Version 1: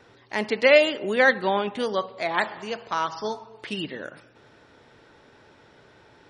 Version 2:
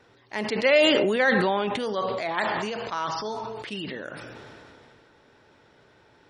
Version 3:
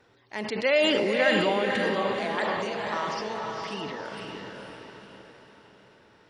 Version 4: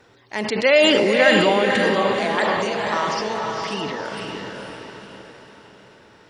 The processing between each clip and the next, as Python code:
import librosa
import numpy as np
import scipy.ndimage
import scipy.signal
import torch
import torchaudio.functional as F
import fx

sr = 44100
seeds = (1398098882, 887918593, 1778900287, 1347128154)

y1 = fx.sustainer(x, sr, db_per_s=20.0)
y1 = F.gain(torch.from_numpy(y1), -4.0).numpy()
y2 = fx.echo_diffused(y1, sr, ms=500, feedback_pct=44, wet_db=-3.5)
y2 = F.gain(torch.from_numpy(y2), -3.5).numpy()
y3 = fx.peak_eq(y2, sr, hz=7400.0, db=4.0, octaves=0.79)
y3 = F.gain(torch.from_numpy(y3), 7.5).numpy()